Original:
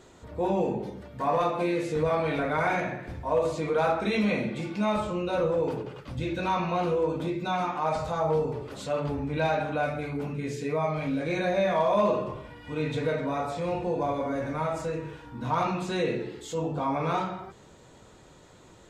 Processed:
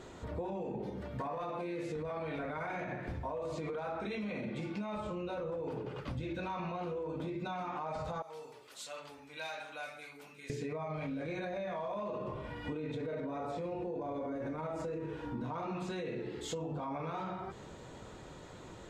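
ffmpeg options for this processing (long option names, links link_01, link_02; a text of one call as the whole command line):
ffmpeg -i in.wav -filter_complex "[0:a]asettb=1/sr,asplit=3[link_01][link_02][link_03];[link_01]atrim=end=8.224[link_04];[link_02]atrim=start=8.22:end=10.5,asetpts=PTS-STARTPTS,afade=type=in:duration=0.004:curve=qsin,afade=type=out:start_time=2.276:duration=0.004:curve=qsin,aderivative[link_05];[link_03]atrim=start=10.496[link_06];[link_04][link_05]acrossfade=duration=0.004:curve1=hsin:curve2=qsin[link_07];[link_07][link_06]acrossfade=duration=0.004:curve1=qsin:curve2=hsin,asettb=1/sr,asplit=3[link_08][link_09][link_10];[link_08]atrim=end=12.654[link_11];[link_09]atrim=start=12.65:end=15.74,asetpts=PTS-STARTPTS,afade=type=in:duration=0.004:curve=qsin,afade=type=out:start_time=3.086:duration=0.004:curve=qsin,equalizer=frequency=360:width=0.96:gain=7.5[link_12];[link_10]atrim=start=15.736[link_13];[link_11][link_12]acrossfade=duration=0.004:curve1=hsin:curve2=qsin[link_14];[link_14][link_13]acrossfade=duration=0.004:curve1=qsin:curve2=hsin,highshelf=frequency=5400:gain=-7.5,alimiter=level_in=1dB:limit=-24dB:level=0:latency=1:release=47,volume=-1dB,acompressor=threshold=-40dB:ratio=6,volume=3.5dB" out.wav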